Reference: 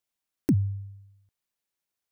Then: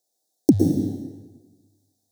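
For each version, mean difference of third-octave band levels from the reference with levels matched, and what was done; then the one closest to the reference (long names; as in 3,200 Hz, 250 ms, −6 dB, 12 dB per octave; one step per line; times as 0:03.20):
13.0 dB: loose part that buzzes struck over −28 dBFS, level −35 dBFS
drawn EQ curve 160 Hz 0 dB, 290 Hz +11 dB, 780 Hz +15 dB, 1,200 Hz −26 dB, 1,700 Hz −4 dB, 2,500 Hz −28 dB, 3,700 Hz +8 dB, 6,400 Hz +13 dB, 15,000 Hz +8 dB
dense smooth reverb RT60 1.3 s, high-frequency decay 0.85×, pre-delay 100 ms, DRR 1 dB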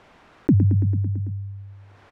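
7.5 dB: low-pass filter 1,500 Hz 12 dB per octave
on a send: repeating echo 111 ms, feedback 60%, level −10 dB
on the sum: envelope flattener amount 50%
level +5 dB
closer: second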